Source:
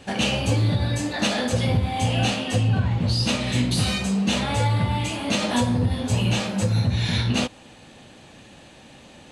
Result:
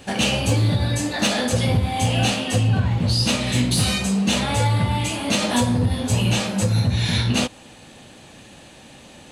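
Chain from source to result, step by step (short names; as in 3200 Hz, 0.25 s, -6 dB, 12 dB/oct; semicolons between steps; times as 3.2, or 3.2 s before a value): high shelf 9600 Hz +11 dB; hard clip -13.5 dBFS, distortion -32 dB; gain +2 dB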